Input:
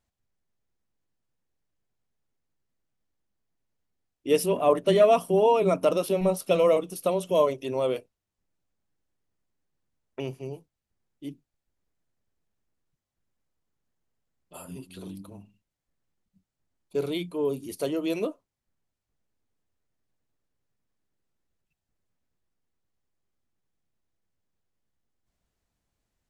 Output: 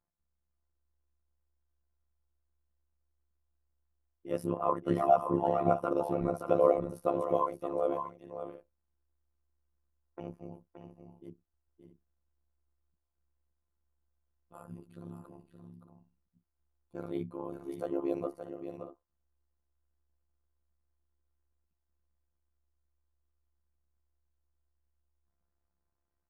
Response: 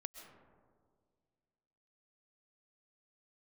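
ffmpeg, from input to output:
-filter_complex "[0:a]afftfilt=real='hypot(re,im)*cos(PI*b)':imag='0':win_size=1024:overlap=0.75,highshelf=f=2k:t=q:w=1.5:g=-13.5,tremolo=f=70:d=0.857,asplit=2[a][b];[b]aecho=0:1:572|629:0.398|0.2[c];[a][c]amix=inputs=2:normalize=0"

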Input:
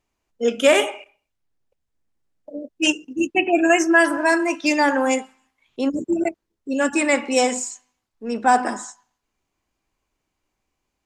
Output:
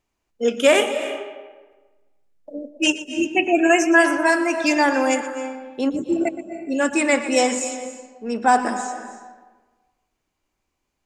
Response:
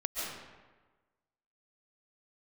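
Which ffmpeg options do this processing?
-filter_complex "[0:a]asplit=2[a][b];[1:a]atrim=start_sample=2205,adelay=120[c];[b][c]afir=irnorm=-1:irlink=0,volume=-14dB[d];[a][d]amix=inputs=2:normalize=0"

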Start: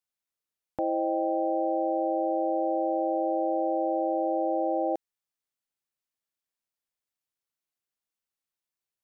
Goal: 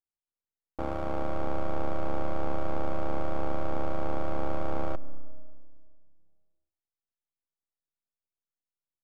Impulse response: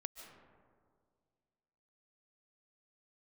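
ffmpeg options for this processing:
-filter_complex "[0:a]lowpass=1k,aeval=exprs='max(val(0),0)':c=same,tremolo=f=72:d=0.75,asplit=2[a][b];[1:a]atrim=start_sample=2205,lowshelf=f=350:g=12[c];[b][c]afir=irnorm=-1:irlink=0,volume=-10dB[d];[a][d]amix=inputs=2:normalize=0"

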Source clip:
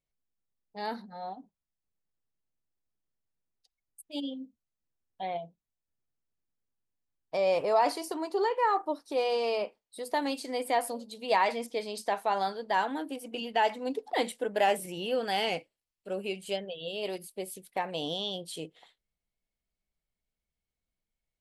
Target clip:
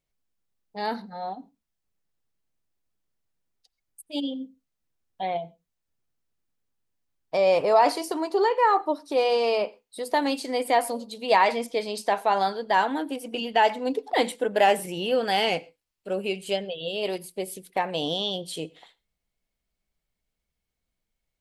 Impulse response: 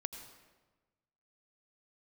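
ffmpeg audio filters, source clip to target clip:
-filter_complex "[0:a]asplit=2[a][b];[1:a]atrim=start_sample=2205,atrim=end_sample=6174,lowpass=8.1k[c];[b][c]afir=irnorm=-1:irlink=0,volume=-12dB[d];[a][d]amix=inputs=2:normalize=0,volume=4.5dB"

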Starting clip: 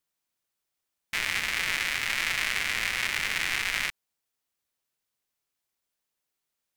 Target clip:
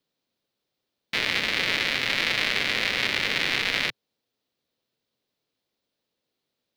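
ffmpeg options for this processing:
-filter_complex "[0:a]equalizer=f=125:t=o:w=1:g=9,equalizer=f=250:t=o:w=1:g=10,equalizer=f=500:t=o:w=1:g=11,equalizer=f=4k:t=o:w=1:g=10,equalizer=f=8k:t=o:w=1:g=-7,equalizer=f=16k:t=o:w=1:g=-6,acrossover=split=280|880|2800[a][b][c][d];[a]alimiter=level_in=13.5dB:limit=-24dB:level=0:latency=1,volume=-13.5dB[e];[e][b][c][d]amix=inputs=4:normalize=0"

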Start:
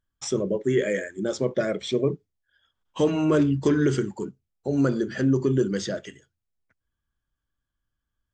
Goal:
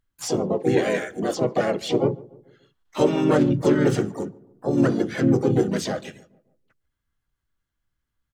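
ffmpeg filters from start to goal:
-filter_complex "[0:a]asplit=4[a][b][c][d];[b]asetrate=37084,aresample=44100,atempo=1.18921,volume=-5dB[e];[c]asetrate=55563,aresample=44100,atempo=0.793701,volume=-4dB[f];[d]asetrate=88200,aresample=44100,atempo=0.5,volume=-14dB[g];[a][e][f][g]amix=inputs=4:normalize=0,asplit=2[h][i];[i]adelay=145,lowpass=f=1.1k:p=1,volume=-21dB,asplit=2[j][k];[k]adelay=145,lowpass=f=1.1k:p=1,volume=0.52,asplit=2[l][m];[m]adelay=145,lowpass=f=1.1k:p=1,volume=0.52,asplit=2[n][o];[o]adelay=145,lowpass=f=1.1k:p=1,volume=0.52[p];[h][j][l][n][p]amix=inputs=5:normalize=0"

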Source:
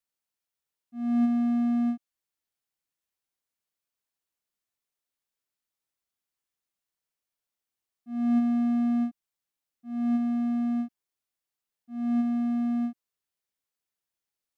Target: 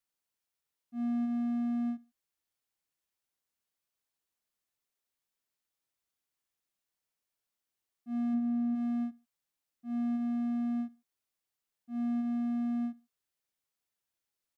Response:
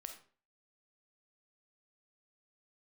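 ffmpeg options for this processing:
-filter_complex "[0:a]asplit=3[a][b][c];[a]afade=t=out:st=8.33:d=0.02[d];[b]tiltshelf=f=970:g=5,afade=t=in:st=8.33:d=0.02,afade=t=out:st=8.74:d=0.02[e];[c]afade=t=in:st=8.74:d=0.02[f];[d][e][f]amix=inputs=3:normalize=0,acompressor=threshold=-30dB:ratio=6,aecho=1:1:72|144:0.0708|0.0205"

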